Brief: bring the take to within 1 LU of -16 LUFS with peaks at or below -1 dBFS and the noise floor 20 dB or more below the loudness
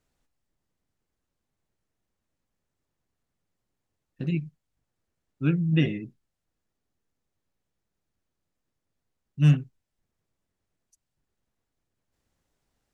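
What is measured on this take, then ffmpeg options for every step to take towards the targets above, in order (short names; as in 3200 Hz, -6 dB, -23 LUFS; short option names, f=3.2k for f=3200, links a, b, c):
loudness -25.5 LUFS; peak -9.5 dBFS; loudness target -16.0 LUFS
-> -af "volume=9.5dB,alimiter=limit=-1dB:level=0:latency=1"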